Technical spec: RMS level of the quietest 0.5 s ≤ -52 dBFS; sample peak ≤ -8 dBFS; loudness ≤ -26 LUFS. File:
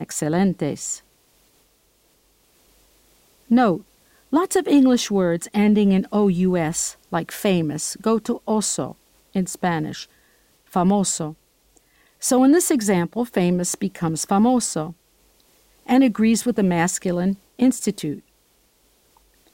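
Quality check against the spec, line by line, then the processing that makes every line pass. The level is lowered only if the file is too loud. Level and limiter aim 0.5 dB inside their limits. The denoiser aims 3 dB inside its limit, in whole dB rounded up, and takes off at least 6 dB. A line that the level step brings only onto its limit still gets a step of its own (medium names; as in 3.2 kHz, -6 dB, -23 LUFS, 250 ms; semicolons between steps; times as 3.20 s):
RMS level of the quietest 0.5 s -61 dBFS: pass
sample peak -7.5 dBFS: fail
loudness -20.5 LUFS: fail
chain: trim -6 dB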